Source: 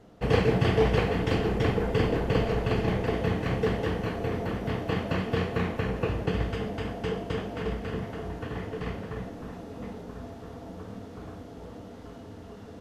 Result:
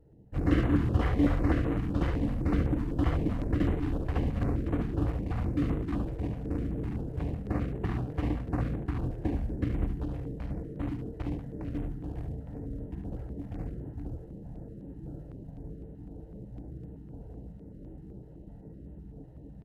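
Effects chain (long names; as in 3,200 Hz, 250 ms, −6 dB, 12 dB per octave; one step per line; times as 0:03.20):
adaptive Wiener filter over 25 samples
floating-point word with a short mantissa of 6 bits
change of speed 0.652×
on a send: single-tap delay 72 ms −7 dB
on the sum: notch on a step sequencer 7.9 Hz 230–5,100 Hz
level −2 dB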